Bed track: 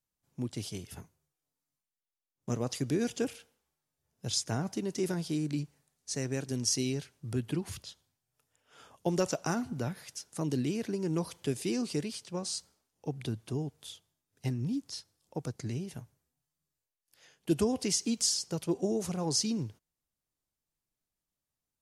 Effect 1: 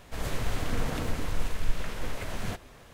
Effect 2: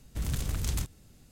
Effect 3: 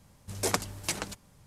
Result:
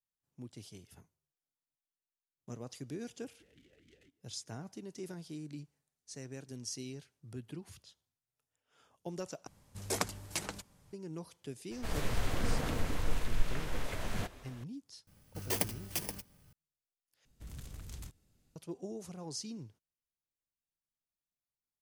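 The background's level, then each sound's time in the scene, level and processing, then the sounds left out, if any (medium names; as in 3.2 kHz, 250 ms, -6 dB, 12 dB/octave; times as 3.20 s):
bed track -12 dB
3.24 s: add 2 -11.5 dB + talking filter e-i 4 Hz
9.47 s: replace with 3 -5.5 dB
11.71 s: add 1 -3 dB
15.07 s: add 3 -4.5 dB + bit-reversed sample order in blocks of 32 samples
17.25 s: replace with 2 -15.5 dB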